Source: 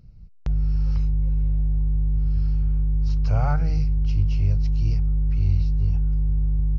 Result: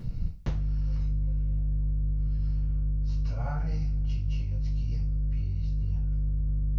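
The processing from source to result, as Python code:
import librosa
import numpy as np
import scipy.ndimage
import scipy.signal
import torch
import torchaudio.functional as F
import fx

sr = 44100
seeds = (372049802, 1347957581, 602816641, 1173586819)

y = fx.over_compress(x, sr, threshold_db=-27.0, ratio=-0.5)
y = fx.rev_double_slope(y, sr, seeds[0], early_s=0.33, late_s=1.9, knee_db=-26, drr_db=-9.5)
y = F.gain(torch.from_numpy(y), -5.0).numpy()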